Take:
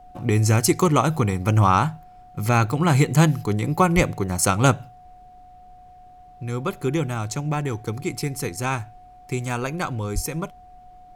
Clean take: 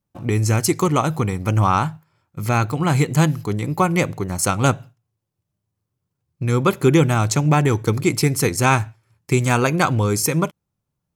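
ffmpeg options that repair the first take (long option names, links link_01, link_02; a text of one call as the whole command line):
ffmpeg -i in.wav -filter_complex "[0:a]bandreject=frequency=730:width=30,asplit=3[link_01][link_02][link_03];[link_01]afade=type=out:start_time=3.95:duration=0.02[link_04];[link_02]highpass=frequency=140:width=0.5412,highpass=frequency=140:width=1.3066,afade=type=in:start_time=3.95:duration=0.02,afade=type=out:start_time=4.07:duration=0.02[link_05];[link_03]afade=type=in:start_time=4.07:duration=0.02[link_06];[link_04][link_05][link_06]amix=inputs=3:normalize=0,asplit=3[link_07][link_08][link_09];[link_07]afade=type=out:start_time=10.14:duration=0.02[link_10];[link_08]highpass=frequency=140:width=0.5412,highpass=frequency=140:width=1.3066,afade=type=in:start_time=10.14:duration=0.02,afade=type=out:start_time=10.26:duration=0.02[link_11];[link_09]afade=type=in:start_time=10.26:duration=0.02[link_12];[link_10][link_11][link_12]amix=inputs=3:normalize=0,agate=range=-21dB:threshold=-39dB,asetnsamples=nb_out_samples=441:pad=0,asendcmd='5.39 volume volume 9dB',volume=0dB" out.wav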